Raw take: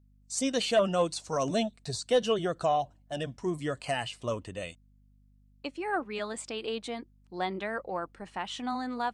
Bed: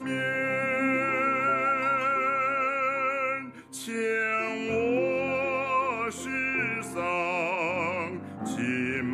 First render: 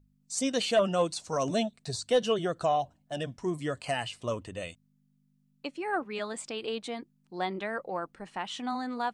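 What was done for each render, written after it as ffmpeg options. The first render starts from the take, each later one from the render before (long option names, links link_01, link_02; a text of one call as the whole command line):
ffmpeg -i in.wav -af "bandreject=frequency=50:width_type=h:width=4,bandreject=frequency=100:width_type=h:width=4" out.wav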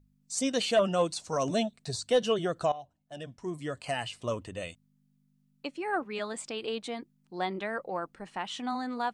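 ffmpeg -i in.wav -filter_complex "[0:a]asplit=2[link_01][link_02];[link_01]atrim=end=2.72,asetpts=PTS-STARTPTS,afade=type=out:start_time=2.716:duration=0.004:curve=hsin:silence=0.158489[link_03];[link_02]atrim=start=2.72,asetpts=PTS-STARTPTS,afade=type=in:duration=1.48:silence=0.158489[link_04];[link_03][link_04]concat=n=2:v=0:a=1" out.wav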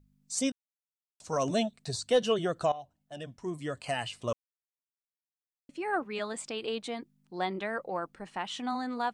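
ffmpeg -i in.wav -filter_complex "[0:a]asplit=5[link_01][link_02][link_03][link_04][link_05];[link_01]atrim=end=0.52,asetpts=PTS-STARTPTS,afade=type=out:start_time=0.516:duration=0.004:curve=hsin[link_06];[link_02]atrim=start=0.52:end=1.2,asetpts=PTS-STARTPTS,volume=0[link_07];[link_03]atrim=start=1.2:end=4.33,asetpts=PTS-STARTPTS,afade=type=in:duration=0.004:curve=hsin,afade=type=out:start_time=3.126:duration=0.004:curve=hsin[link_08];[link_04]atrim=start=4.33:end=5.69,asetpts=PTS-STARTPTS,volume=0[link_09];[link_05]atrim=start=5.69,asetpts=PTS-STARTPTS,afade=type=in:duration=0.004:curve=hsin[link_10];[link_06][link_07][link_08][link_09][link_10]concat=n=5:v=0:a=1" out.wav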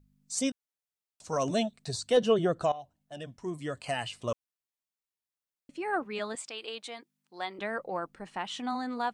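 ffmpeg -i in.wav -filter_complex "[0:a]asettb=1/sr,asplit=3[link_01][link_02][link_03];[link_01]atrim=end=2.174[link_04];[link_02]atrim=start=2.17:end=2.63,asetpts=PTS-STARTPTS,afade=type=in:duration=0.004:curve=qsin,afade=type=out:start_time=0.456:duration=0.004:curve=qsin,tiltshelf=frequency=1400:gain=4.5[link_05];[link_03]atrim=start=2.626[link_06];[link_04][link_05]acrossfade=duration=0.004:curve1=hsin:curve2=qsin[link_07];[link_07][link_06]acrossfade=duration=0.004:curve1=qsin:curve2=hsin,asettb=1/sr,asplit=3[link_08][link_09][link_10];[link_08]atrim=end=6.354[link_11];[link_09]atrim=start=6.35:end=7.59,asetpts=PTS-STARTPTS,afade=type=in:duration=0.004:curve=qsin,afade=type=out:start_time=1.236:duration=0.004:curve=qsin,highpass=frequency=1000:poles=1[link_12];[link_10]atrim=start=7.586[link_13];[link_11][link_12]acrossfade=duration=0.004:curve1=hsin:curve2=qsin[link_14];[link_14][link_13]acrossfade=duration=0.004:curve1=qsin:curve2=hsin" out.wav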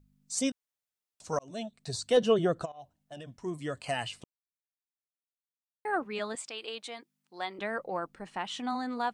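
ffmpeg -i in.wav -filter_complex "[0:a]asplit=3[link_01][link_02][link_03];[link_01]afade=type=out:start_time=2.64:duration=0.02[link_04];[link_02]acompressor=threshold=-39dB:ratio=20:attack=3.2:release=140:knee=1:detection=peak,afade=type=in:start_time=2.64:duration=0.02,afade=type=out:start_time=3.3:duration=0.02[link_05];[link_03]afade=type=in:start_time=3.3:duration=0.02[link_06];[link_04][link_05][link_06]amix=inputs=3:normalize=0,asplit=4[link_07][link_08][link_09][link_10];[link_07]atrim=end=1.39,asetpts=PTS-STARTPTS,afade=type=out:start_time=1.386:duration=0.004:curve=hsin[link_11];[link_08]atrim=start=1.39:end=4.24,asetpts=PTS-STARTPTS,afade=type=in:duration=0.61,afade=type=out:start_time=2.846:duration=0.004:curve=hsin[link_12];[link_09]atrim=start=4.24:end=5.85,asetpts=PTS-STARTPTS,volume=0[link_13];[link_10]atrim=start=5.85,asetpts=PTS-STARTPTS,afade=type=in:duration=0.004:curve=hsin[link_14];[link_11][link_12][link_13][link_14]concat=n=4:v=0:a=1" out.wav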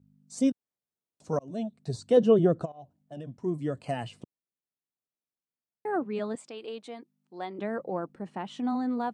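ffmpeg -i in.wav -af "highpass=130,tiltshelf=frequency=730:gain=9.5" out.wav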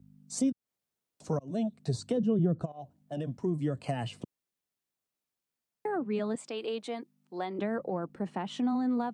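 ffmpeg -i in.wav -filter_complex "[0:a]acrossover=split=220[link_01][link_02];[link_02]acompressor=threshold=-34dB:ratio=10[link_03];[link_01][link_03]amix=inputs=2:normalize=0,asplit=2[link_04][link_05];[link_05]alimiter=level_in=7dB:limit=-24dB:level=0:latency=1:release=367,volume=-7dB,volume=-1.5dB[link_06];[link_04][link_06]amix=inputs=2:normalize=0" out.wav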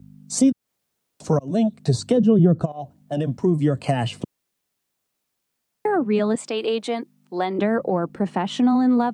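ffmpeg -i in.wav -af "volume=11.5dB" out.wav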